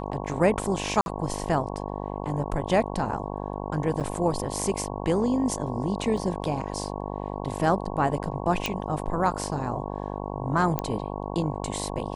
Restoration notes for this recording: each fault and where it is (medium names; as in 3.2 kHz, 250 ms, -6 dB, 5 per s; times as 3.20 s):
buzz 50 Hz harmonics 22 -33 dBFS
1.01–1.06 s: dropout 51 ms
4.00–4.01 s: dropout 7.6 ms
6.17 s: dropout 4.5 ms
8.66 s: pop
10.79 s: pop -11 dBFS